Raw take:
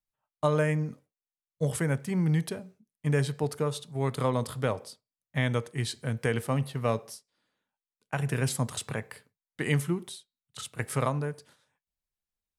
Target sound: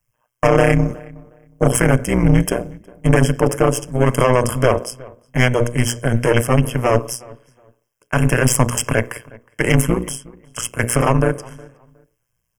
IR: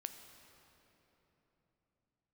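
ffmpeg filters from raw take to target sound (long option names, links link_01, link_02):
-filter_complex "[0:a]bandreject=frequency=60:width_type=h:width=6,bandreject=frequency=120:width_type=h:width=6,bandreject=frequency=180:width_type=h:width=6,bandreject=frequency=240:width_type=h:width=6,bandreject=frequency=300:width_type=h:width=6,bandreject=frequency=360:width_type=h:width=6,bandreject=frequency=420:width_type=h:width=6,bandreject=frequency=480:width_type=h:width=6,aecho=1:1:1.9:0.76,aeval=exprs='(tanh(20*val(0)+0.45)-tanh(0.45))/20':channel_layout=same,tremolo=f=120:d=1,asuperstop=centerf=4000:order=20:qfactor=2.4,asplit=2[link_01][link_02];[link_02]adelay=364,lowpass=frequency=1900:poles=1,volume=-22.5dB,asplit=2[link_03][link_04];[link_04]adelay=364,lowpass=frequency=1900:poles=1,volume=0.23[link_05];[link_01][link_03][link_05]amix=inputs=3:normalize=0,alimiter=level_in=22dB:limit=-1dB:release=50:level=0:latency=1,volume=-1dB"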